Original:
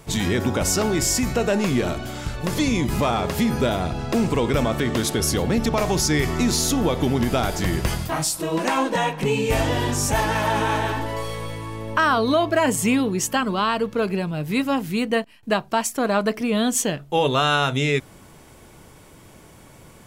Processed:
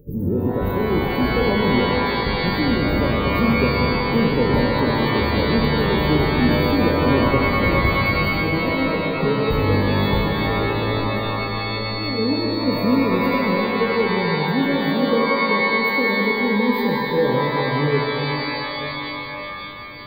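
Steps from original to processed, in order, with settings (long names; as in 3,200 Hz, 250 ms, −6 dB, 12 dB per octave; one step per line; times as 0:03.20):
linear-phase brick-wall band-stop 590–14,000 Hz
reverb with rising layers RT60 3.4 s, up +12 semitones, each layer −2 dB, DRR 0.5 dB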